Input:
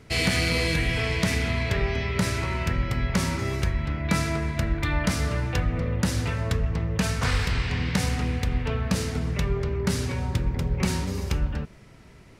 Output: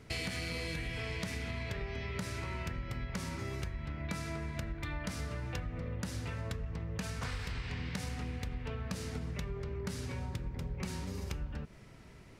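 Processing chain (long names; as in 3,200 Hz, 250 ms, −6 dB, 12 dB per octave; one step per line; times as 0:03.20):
downward compressor, threshold −31 dBFS, peak gain reduction 12 dB
level −4.5 dB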